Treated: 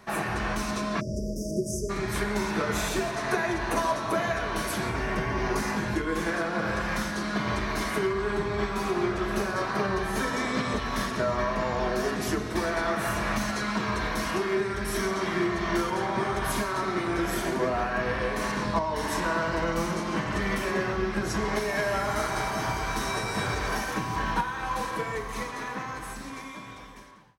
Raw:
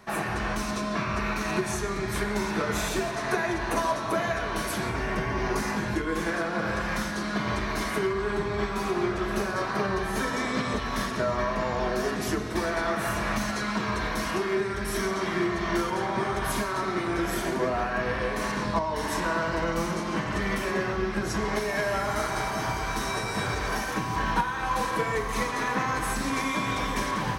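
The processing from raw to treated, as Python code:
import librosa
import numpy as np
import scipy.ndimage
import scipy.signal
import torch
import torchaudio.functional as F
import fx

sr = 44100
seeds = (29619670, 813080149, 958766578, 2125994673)

y = fx.fade_out_tail(x, sr, length_s=3.73)
y = fx.spec_erase(y, sr, start_s=1.0, length_s=0.9, low_hz=660.0, high_hz=4700.0)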